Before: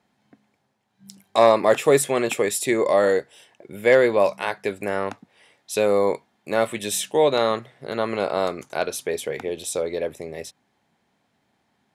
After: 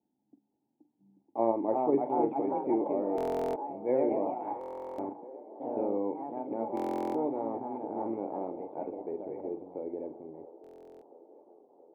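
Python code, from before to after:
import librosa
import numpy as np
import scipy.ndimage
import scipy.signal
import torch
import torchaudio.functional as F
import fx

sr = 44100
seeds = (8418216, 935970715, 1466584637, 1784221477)

p1 = fx.env_lowpass(x, sr, base_hz=680.0, full_db=-16.5)
p2 = fx.low_shelf(p1, sr, hz=340.0, db=-10.5)
p3 = fx.level_steps(p2, sr, step_db=17)
p4 = p2 + F.gain(torch.from_numpy(p3), -1.5).numpy()
p5 = fx.echo_pitch(p4, sr, ms=511, semitones=2, count=3, db_per_echo=-3.0)
p6 = fx.formant_cascade(p5, sr, vowel='u')
p7 = fx.doubler(p6, sr, ms=44.0, db=-12.0)
p8 = fx.echo_wet_bandpass(p7, sr, ms=677, feedback_pct=67, hz=630.0, wet_db=-16.0)
p9 = fx.buffer_glitch(p8, sr, at_s=(3.16, 4.59, 6.75, 10.62), block=1024, repeats=16)
y = F.gain(torch.from_numpy(p9), 2.0).numpy()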